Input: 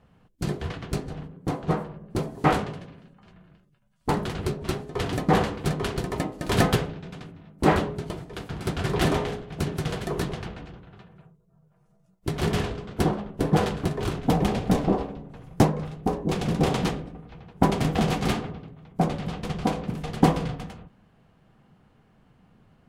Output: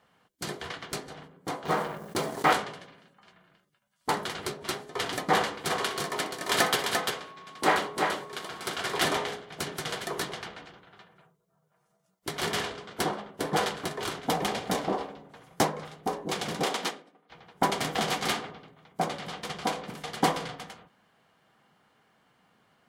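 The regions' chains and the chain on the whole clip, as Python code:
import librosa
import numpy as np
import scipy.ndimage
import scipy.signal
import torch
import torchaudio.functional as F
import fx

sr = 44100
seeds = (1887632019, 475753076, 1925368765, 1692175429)

y = fx.chain(x, sr, fx.law_mismatch(coded='A'),
    fx.env_flatten(amount_pct=50), at=(1.65, 2.53))
y = fx.low_shelf(y, sr, hz=150.0, db=-8.5, at=(5.69, 9.0), fade=0.02)
y = fx.dmg_tone(y, sr, hz=1100.0, level_db=-41.0, at=(5.69, 9.0), fade=0.02)
y = fx.echo_multitap(y, sr, ms=(62, 345), db=(-14.5, -4.0), at=(5.69, 9.0), fade=0.02)
y = fx.chain(y, sr, fx.highpass(hz=200.0, slope=24),
    fx.upward_expand(threshold_db=-47.0, expansion=1.5), at=(16.63, 17.3))
y = fx.highpass(y, sr, hz=1200.0, slope=6)
y = fx.notch(y, sr, hz=2600.0, q=12.0)
y = y * 10.0 ** (4.0 / 20.0)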